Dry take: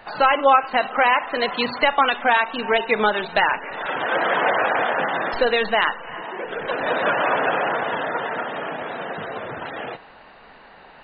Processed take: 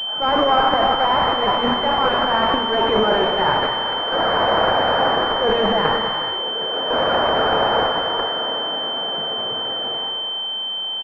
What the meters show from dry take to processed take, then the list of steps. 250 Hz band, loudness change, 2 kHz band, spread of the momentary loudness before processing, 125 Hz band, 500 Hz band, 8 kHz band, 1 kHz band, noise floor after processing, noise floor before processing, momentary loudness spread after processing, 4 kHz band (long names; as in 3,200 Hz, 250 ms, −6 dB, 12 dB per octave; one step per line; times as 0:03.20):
+5.5 dB, +2.5 dB, −3.0 dB, 13 LU, +8.5 dB, +3.0 dB, can't be measured, +2.0 dB, −26 dBFS, −47 dBFS, 6 LU, +12.5 dB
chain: low-shelf EQ 190 Hz −8 dB
transient designer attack −9 dB, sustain +12 dB
in parallel at +3 dB: output level in coarse steps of 24 dB
on the sum: asymmetric clip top −17.5 dBFS
on a send: echo with shifted repeats 99 ms, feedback 62%, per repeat +140 Hz, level −11 dB
on the sum: reverb whose tail is shaped and stops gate 450 ms flat, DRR 4.5 dB
switching amplifier with a slow clock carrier 3,100 Hz
level −1 dB